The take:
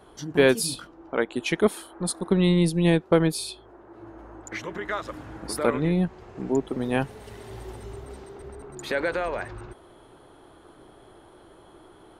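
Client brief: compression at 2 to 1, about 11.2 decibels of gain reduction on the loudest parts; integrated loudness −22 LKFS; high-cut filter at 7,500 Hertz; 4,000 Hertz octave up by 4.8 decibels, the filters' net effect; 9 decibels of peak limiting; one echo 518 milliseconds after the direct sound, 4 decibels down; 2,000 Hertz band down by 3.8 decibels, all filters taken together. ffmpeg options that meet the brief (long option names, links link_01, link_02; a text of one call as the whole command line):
ffmpeg -i in.wav -af "lowpass=7500,equalizer=frequency=2000:width_type=o:gain=-7,equalizer=frequency=4000:width_type=o:gain=8,acompressor=threshold=-35dB:ratio=2,alimiter=level_in=2dB:limit=-24dB:level=0:latency=1,volume=-2dB,aecho=1:1:518:0.631,volume=14.5dB" out.wav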